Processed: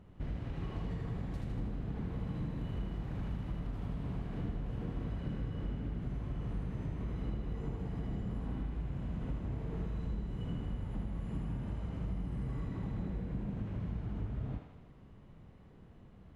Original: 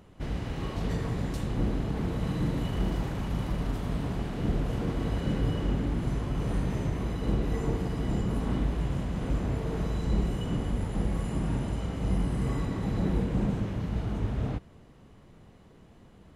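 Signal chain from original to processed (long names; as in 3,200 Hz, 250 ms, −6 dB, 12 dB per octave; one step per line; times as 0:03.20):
bass and treble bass +7 dB, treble −10 dB
downward compressor, threshold −27 dBFS, peak gain reduction 12 dB
feedback echo with a high-pass in the loop 79 ms, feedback 66%, high-pass 420 Hz, level −4 dB
level −7.5 dB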